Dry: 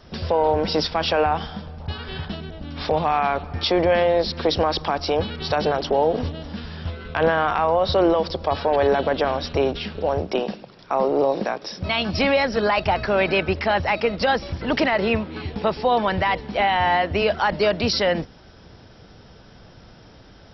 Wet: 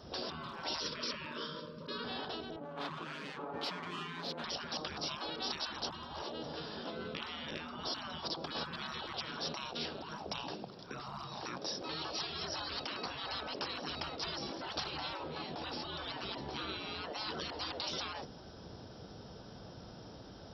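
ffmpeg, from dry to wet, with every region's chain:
-filter_complex "[0:a]asettb=1/sr,asplit=3[a][b][c];[a]atrim=end=0.794[d];[b]atrim=start=0.79:end=2.04,asetpts=PTS-STARTPTS,afade=t=in:d=0.004:c=qsin,afade=t=out:st=1.246:d=0.004:c=qsin,asubboost=boost=11:cutoff=83,asuperstop=centerf=760:order=20:qfactor=2.4[e];[c]atrim=start=2.036[f];[d][e]acrossfade=d=0.004:c1=hsin:c2=qsin[g];[g][f]acrossfade=d=0.004:c1=qsin:c2=hsin,asettb=1/sr,asplit=3[h][i][j];[h]atrim=end=2.564[k];[i]atrim=start=2.56:end=4.44,asetpts=PTS-STARTPTS,afade=t=in:d=0.004:c=qsin,afade=t=out:st=1.876:d=0.004:c=qsin,adynamicsmooth=sensitivity=6.5:basefreq=950,highpass=360,lowpass=2.5k,aecho=1:1:7.1:0.65,atrim=end_sample=82908[l];[j]atrim=start=4.436[m];[k][l]acrossfade=d=0.004:c1=hsin:c2=qsin[n];[n][m]acrossfade=d=0.004:c1=qsin:c2=hsin,afftfilt=real='re*lt(hypot(re,im),0.0891)':imag='im*lt(hypot(re,im),0.0891)':win_size=1024:overlap=0.75,highpass=f=120:p=1,equalizer=f=2.1k:w=1.4:g=-11,volume=-1dB"

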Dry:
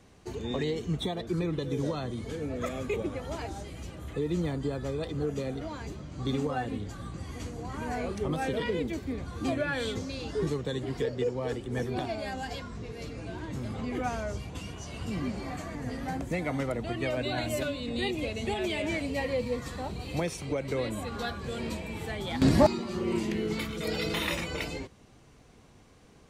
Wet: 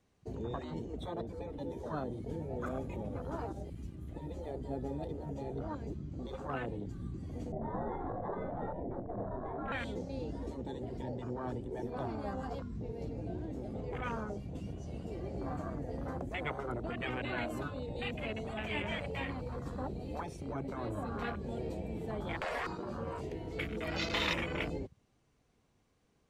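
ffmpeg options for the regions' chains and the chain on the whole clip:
-filter_complex "[0:a]asettb=1/sr,asplit=3[a][b][c];[a]atrim=end=1.494[d];[b]atrim=start=1.49:end=5.3,asetpts=PTS-STARTPTS,afade=t=in:d=0.004:c=qsin,afade=t=out:st=3.806:d=0.004:c=qsin,aeval=exprs='sgn(val(0))*max(abs(val(0))-0.00178,0)':c=same,equalizer=f=11k:t=o:w=0.33:g=5.5[e];[c]atrim=start=5.296[f];[d][e]acrossfade=d=0.004:c1=hsin:c2=qsin[g];[g][f]acrossfade=d=0.004:c1=qsin:c2=hsin,asettb=1/sr,asplit=3[h][i][j];[h]atrim=end=7.524[k];[i]atrim=start=7.52:end=9.72,asetpts=PTS-STARTPTS,afade=t=in:d=0.004:c=qsin,afade=t=out:st=2.196:d=0.004:c=qsin,lowpass=f=780:t=q:w=5,afreqshift=-83,asplit=2[l][m];[m]adelay=26,volume=-6.5dB[n];[l][n]amix=inputs=2:normalize=0,atrim=end_sample=97020[o];[j]atrim=start=9.716[p];[k][o]acrossfade=d=0.004:c1=hsin:c2=qsin[q];[q][p]acrossfade=d=0.004:c1=qsin:c2=hsin,afwtdn=0.0141,afftfilt=real='re*lt(hypot(re,im),0.126)':imag='im*lt(hypot(re,im),0.126)':win_size=1024:overlap=0.75"

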